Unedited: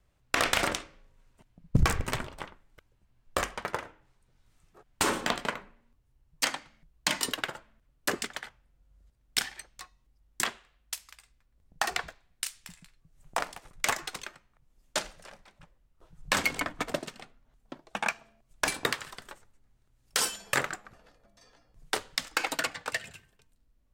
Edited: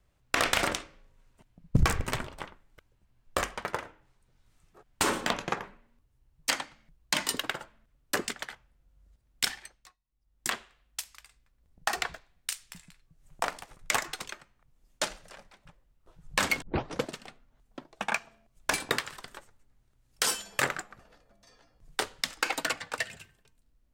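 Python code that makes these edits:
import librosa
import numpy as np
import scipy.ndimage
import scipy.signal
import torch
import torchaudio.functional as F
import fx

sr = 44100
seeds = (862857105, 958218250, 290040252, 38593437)

y = fx.edit(x, sr, fx.speed_span(start_s=5.33, length_s=0.25, speed=0.81),
    fx.fade_down_up(start_s=9.44, length_s=1.07, db=-20.5, fade_s=0.48),
    fx.tape_start(start_s=16.56, length_s=0.46), tone=tone)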